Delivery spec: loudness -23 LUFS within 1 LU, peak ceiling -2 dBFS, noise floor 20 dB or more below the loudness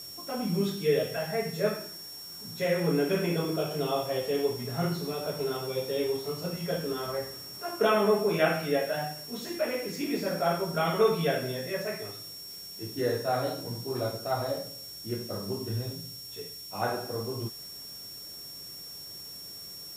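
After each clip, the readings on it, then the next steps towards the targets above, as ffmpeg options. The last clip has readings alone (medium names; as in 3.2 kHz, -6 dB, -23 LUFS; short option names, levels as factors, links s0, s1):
steady tone 5.5 kHz; tone level -42 dBFS; noise floor -43 dBFS; noise floor target -51 dBFS; loudness -31.0 LUFS; peak level -11.5 dBFS; loudness target -23.0 LUFS
-> -af "bandreject=f=5500:w=30"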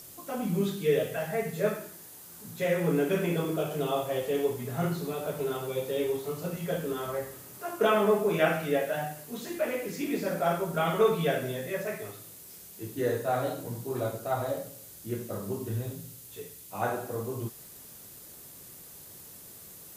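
steady tone not found; noise floor -49 dBFS; noise floor target -51 dBFS
-> -af "afftdn=nr=6:nf=-49"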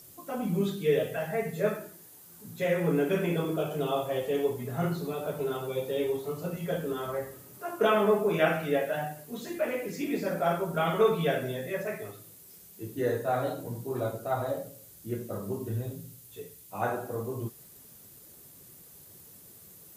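noise floor -53 dBFS; loudness -30.5 LUFS; peak level -11.5 dBFS; loudness target -23.0 LUFS
-> -af "volume=2.37"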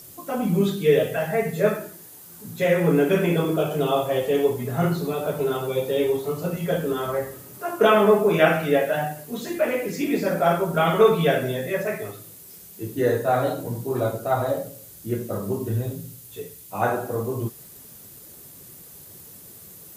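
loudness -23.0 LUFS; peak level -4.0 dBFS; noise floor -45 dBFS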